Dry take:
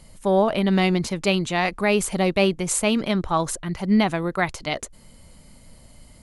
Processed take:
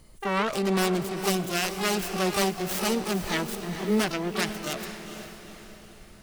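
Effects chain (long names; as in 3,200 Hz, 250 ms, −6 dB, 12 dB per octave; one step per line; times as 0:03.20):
phase distortion by the signal itself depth 0.53 ms
pitch-shifted copies added +12 semitones −4 dB
feedback delay with all-pass diffusion 464 ms, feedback 48%, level −9.5 dB
level −7 dB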